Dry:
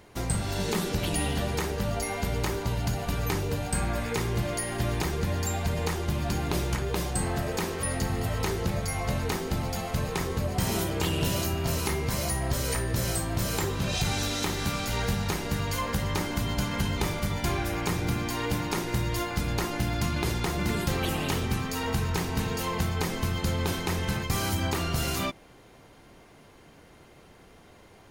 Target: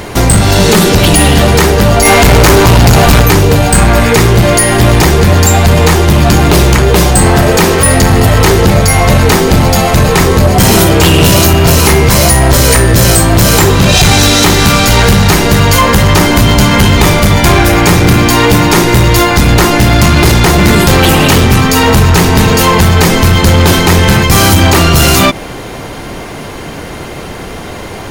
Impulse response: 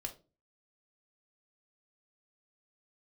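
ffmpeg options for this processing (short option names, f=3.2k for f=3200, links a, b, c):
-filter_complex "[0:a]asettb=1/sr,asplit=3[a][b][c];[a]atrim=end=2.054[d];[b]atrim=start=2.05:end=3.22,asetpts=PTS-STARTPTS,afade=t=in:d=0.004:c=qsin,afade=t=out:st=1.166:d=0.004:c=qsin,acontrast=88[e];[c]atrim=start=3.216[f];[d][e]acrossfade=d=0.004:c1=hsin:c2=qsin[g];[g][f]acrossfade=d=0.004:c1=qsin:c2=hsin,asoftclip=type=hard:threshold=-26.5dB,alimiter=level_in=31.5dB:limit=-1dB:release=50:level=0:latency=1,volume=-1dB"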